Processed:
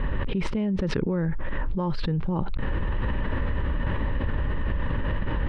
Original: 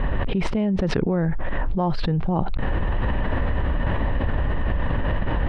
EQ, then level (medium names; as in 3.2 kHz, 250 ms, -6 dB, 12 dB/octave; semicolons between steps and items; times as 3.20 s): peaking EQ 710 Hz -15 dB 0.23 oct; -3.5 dB